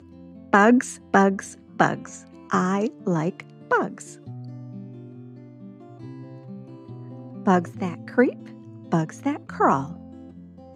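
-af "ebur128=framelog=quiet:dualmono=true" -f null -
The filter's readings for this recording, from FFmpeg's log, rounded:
Integrated loudness:
  I:         -19.9 LUFS
  Threshold: -32.4 LUFS
Loudness range:
  LRA:        13.2 LU
  Threshold: -43.7 LUFS
  LRA low:   -32.6 LUFS
  LRA high:  -19.4 LUFS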